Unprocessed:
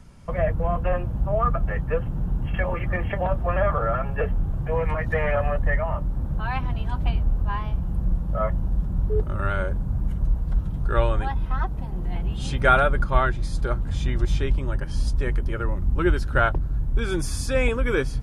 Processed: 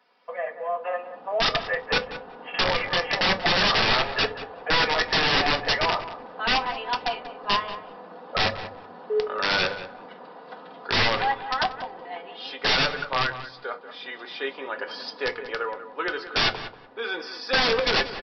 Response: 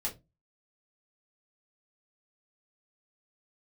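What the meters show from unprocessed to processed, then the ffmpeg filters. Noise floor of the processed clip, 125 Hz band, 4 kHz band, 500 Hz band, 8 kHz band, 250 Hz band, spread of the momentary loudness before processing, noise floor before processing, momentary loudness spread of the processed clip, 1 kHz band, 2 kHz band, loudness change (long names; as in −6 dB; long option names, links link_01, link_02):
−45 dBFS, −14.5 dB, +17.0 dB, −2.0 dB, −1.5 dB, −5.0 dB, 6 LU, −30 dBFS, 17 LU, +1.5 dB, +5.0 dB, +1.0 dB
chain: -filter_complex "[0:a]highpass=frequency=430:width=0.5412,highpass=frequency=430:width=1.3066,aecho=1:1:4.1:0.57,dynaudnorm=framelen=790:gausssize=3:maxgain=14dB,aresample=11025,aeval=exprs='(mod(3.55*val(0)+1,2)-1)/3.55':channel_layout=same,aresample=44100,asplit=2[link_01][link_02];[link_02]adelay=186,lowpass=frequency=2300:poles=1,volume=-11.5dB,asplit=2[link_03][link_04];[link_04]adelay=186,lowpass=frequency=2300:poles=1,volume=0.19[link_05];[link_01][link_03][link_05]amix=inputs=3:normalize=0,asplit=2[link_06][link_07];[1:a]atrim=start_sample=2205[link_08];[link_07][link_08]afir=irnorm=-1:irlink=0,volume=-7dB[link_09];[link_06][link_09]amix=inputs=2:normalize=0,volume=-7.5dB"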